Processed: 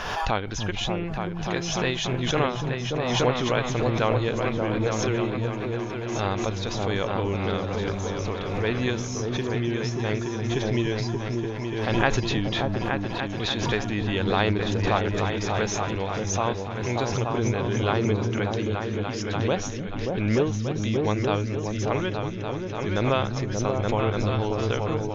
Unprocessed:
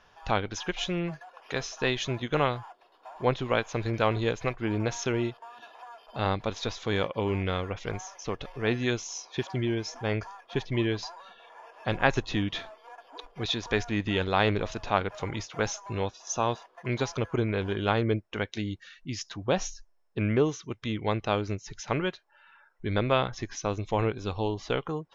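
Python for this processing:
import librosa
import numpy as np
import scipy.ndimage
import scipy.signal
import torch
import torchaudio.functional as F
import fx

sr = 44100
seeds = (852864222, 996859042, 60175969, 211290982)

y = fx.echo_opening(x, sr, ms=291, hz=200, octaves=2, feedback_pct=70, wet_db=0)
y = fx.pre_swell(y, sr, db_per_s=32.0)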